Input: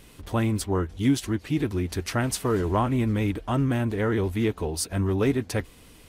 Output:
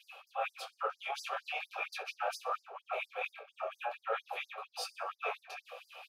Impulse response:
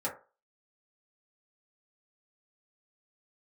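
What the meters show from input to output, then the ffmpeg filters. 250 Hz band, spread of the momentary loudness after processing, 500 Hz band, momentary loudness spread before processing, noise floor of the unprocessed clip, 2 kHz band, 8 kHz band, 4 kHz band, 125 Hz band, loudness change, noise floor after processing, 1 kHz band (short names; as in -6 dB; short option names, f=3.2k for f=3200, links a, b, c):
under -40 dB, 6 LU, -14.0 dB, 4 LU, -51 dBFS, -5.0 dB, -18.0 dB, -7.5 dB, under -40 dB, -13.5 dB, -77 dBFS, -5.0 dB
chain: -filter_complex "[1:a]atrim=start_sample=2205,atrim=end_sample=3087[a];[0:a][a]afir=irnorm=-1:irlink=0,acrossover=split=100|3900[b][c][d];[c]acontrast=63[e];[b][e][d]amix=inputs=3:normalize=0,bandreject=f=70.99:t=h:w=4,bandreject=f=141.98:t=h:w=4,bandreject=f=212.97:t=h:w=4,bandreject=f=283.96:t=h:w=4,bandreject=f=354.95:t=h:w=4,bandreject=f=425.94:t=h:w=4,bandreject=f=496.93:t=h:w=4,bandreject=f=567.92:t=h:w=4,bandreject=f=638.91:t=h:w=4,bandreject=f=709.9:t=h:w=4,crystalizer=i=5.5:c=0,asplit=3[f][g][h];[f]bandpass=f=730:t=q:w=8,volume=0dB[i];[g]bandpass=f=1.09k:t=q:w=8,volume=-6dB[j];[h]bandpass=f=2.44k:t=q:w=8,volume=-9dB[k];[i][j][k]amix=inputs=3:normalize=0,flanger=delay=18:depth=7.3:speed=0.42,equalizer=f=190:w=0.91:g=-12.5,areverse,acompressor=threshold=-40dB:ratio=12,areverse,equalizer=f=8.3k:w=2:g=-12.5,aecho=1:1:62|124|186|248:0.1|0.055|0.0303|0.0166,afftfilt=real='re*gte(b*sr/1024,380*pow(4700/380,0.5+0.5*sin(2*PI*4.3*pts/sr)))':imag='im*gte(b*sr/1024,380*pow(4700/380,0.5+0.5*sin(2*PI*4.3*pts/sr)))':win_size=1024:overlap=0.75,volume=9.5dB"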